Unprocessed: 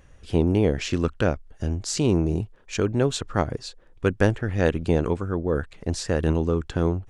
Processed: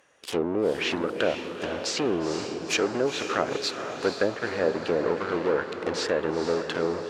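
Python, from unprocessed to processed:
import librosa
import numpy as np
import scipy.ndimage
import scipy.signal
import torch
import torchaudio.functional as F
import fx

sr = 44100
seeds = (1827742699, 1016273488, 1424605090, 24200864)

p1 = fx.dynamic_eq(x, sr, hz=840.0, q=1.0, threshold_db=-36.0, ratio=4.0, max_db=-5)
p2 = fx.fuzz(p1, sr, gain_db=40.0, gate_db=-38.0)
p3 = p1 + (p2 * librosa.db_to_amplitude(-9.5))
p4 = fx.env_lowpass_down(p3, sr, base_hz=850.0, full_db=-13.0)
p5 = scipy.signal.sosfilt(scipy.signal.butter(2, 460.0, 'highpass', fs=sr, output='sos'), p4)
y = fx.echo_diffused(p5, sr, ms=470, feedback_pct=54, wet_db=-7.5)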